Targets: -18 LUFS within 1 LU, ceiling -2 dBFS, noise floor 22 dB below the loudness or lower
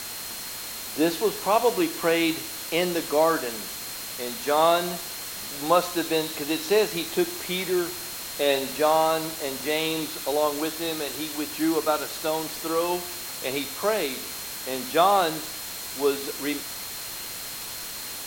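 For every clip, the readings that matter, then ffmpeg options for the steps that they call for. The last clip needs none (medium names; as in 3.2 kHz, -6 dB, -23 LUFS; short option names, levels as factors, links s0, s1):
steady tone 4.2 kHz; tone level -42 dBFS; noise floor -36 dBFS; noise floor target -48 dBFS; loudness -26.0 LUFS; peak level -7.5 dBFS; loudness target -18.0 LUFS
-> -af "bandreject=f=4200:w=30"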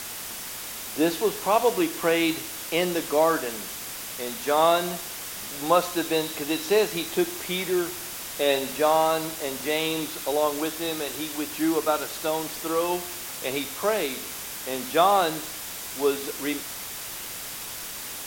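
steady tone not found; noise floor -36 dBFS; noise floor target -48 dBFS
-> -af "afftdn=nr=12:nf=-36"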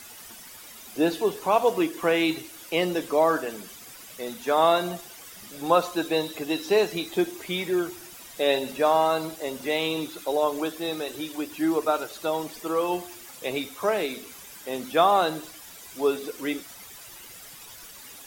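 noise floor -45 dBFS; noise floor target -48 dBFS
-> -af "afftdn=nr=6:nf=-45"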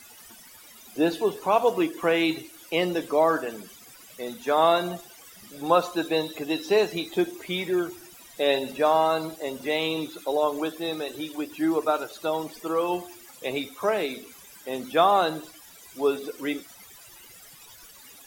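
noise floor -49 dBFS; loudness -26.0 LUFS; peak level -7.5 dBFS; loudness target -18.0 LUFS
-> -af "volume=2.51,alimiter=limit=0.794:level=0:latency=1"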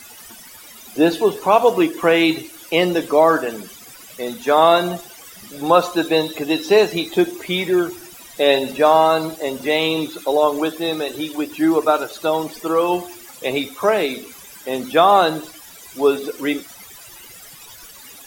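loudness -18.0 LUFS; peak level -2.0 dBFS; noise floor -41 dBFS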